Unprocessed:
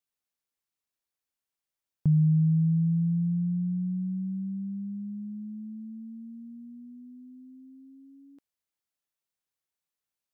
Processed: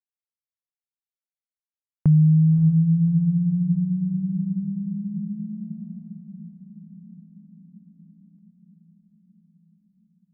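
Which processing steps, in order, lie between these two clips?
gate -40 dBFS, range -22 dB; tilt EQ -2 dB/octave; echo that smears into a reverb 589 ms, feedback 64%, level -12 dB; trim +1 dB

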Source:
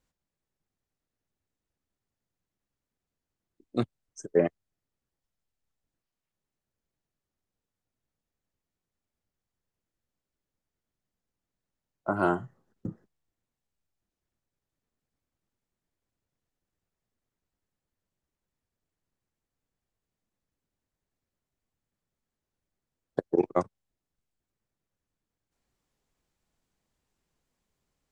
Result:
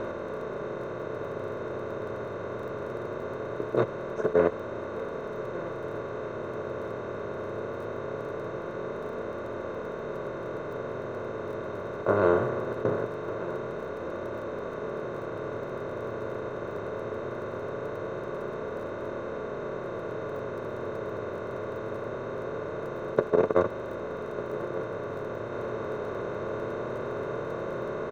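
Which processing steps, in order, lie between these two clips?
spectral levelling over time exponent 0.2; low-pass 2.8 kHz 12 dB/octave; band-stop 740 Hz, Q 17; comb 1.9 ms, depth 42%; feedback delay 1199 ms, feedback 29%, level -15 dB; crackle 19 per s -39 dBFS; flange 0.21 Hz, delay 3.1 ms, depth 7.4 ms, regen -55%

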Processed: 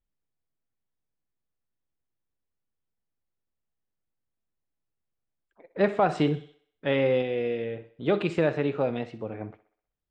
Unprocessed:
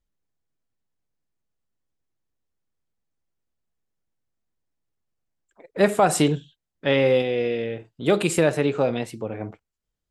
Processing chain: Bessel low-pass 3 kHz, order 4; on a send: thinning echo 63 ms, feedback 51%, high-pass 270 Hz, level -15.5 dB; on the sum: trim -4.5 dB

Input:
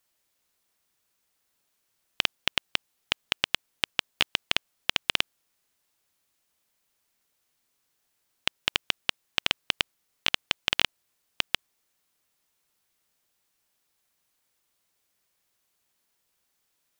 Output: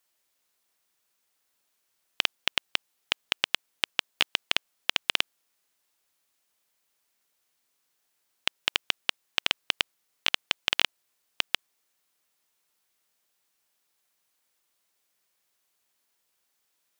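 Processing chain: bass shelf 190 Hz -10 dB

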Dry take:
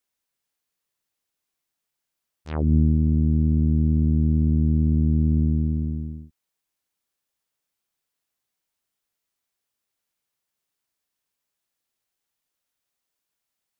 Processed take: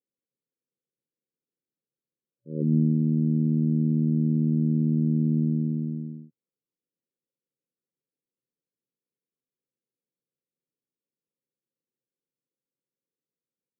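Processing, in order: FFT band-pass 110–560 Hz

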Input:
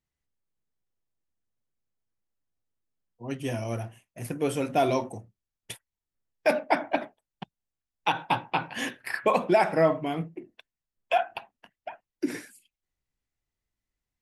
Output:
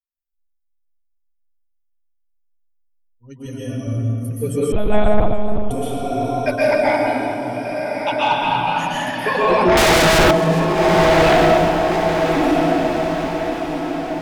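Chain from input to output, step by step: expander on every frequency bin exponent 2; reverberation RT60 2.9 s, pre-delay 115 ms, DRR -9.5 dB; 9.77–10.31 s: waveshaping leveller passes 5; echo that smears into a reverb 1233 ms, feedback 46%, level -7 dB; sine folder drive 8 dB, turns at -1 dBFS; 3.46–3.87 s: bass shelf 160 Hz -9.5 dB; 4.72–5.71 s: monotone LPC vocoder at 8 kHz 210 Hz; bass shelf 77 Hz +8 dB; modulated delay 416 ms, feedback 32%, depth 81 cents, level -16 dB; trim -8 dB

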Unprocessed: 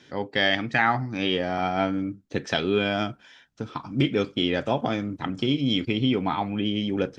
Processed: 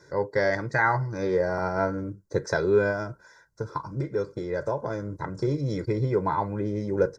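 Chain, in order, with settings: 2.90–5.36 s: compression 4:1, threshold -26 dBFS, peak gain reduction 8.5 dB; Butterworth band-stop 2.9 kHz, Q 0.91; comb 2 ms, depth 90%

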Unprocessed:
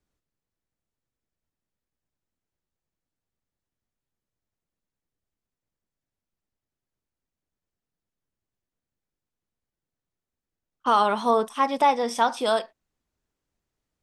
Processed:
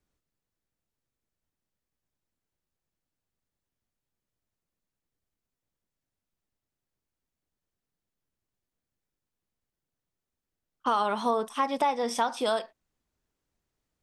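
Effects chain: compression 2.5:1, threshold -25 dBFS, peak gain reduction 7.5 dB

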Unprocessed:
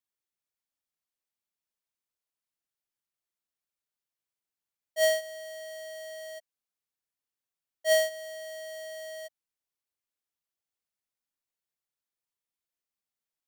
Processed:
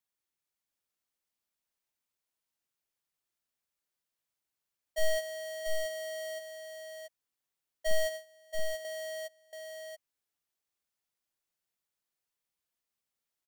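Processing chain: one-sided wavefolder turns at -32 dBFS; 7.91–8.85 s: gate with hold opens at -30 dBFS; on a send: delay 681 ms -5 dB; on the sum: trim +1.5 dB

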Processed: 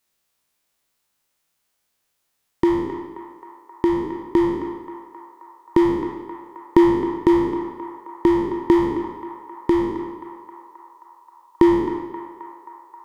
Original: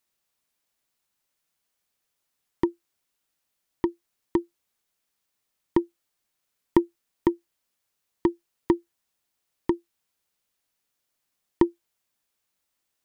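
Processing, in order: spectral sustain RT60 0.97 s; band-passed feedback delay 265 ms, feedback 78%, band-pass 990 Hz, level -9 dB; trim +3.5 dB

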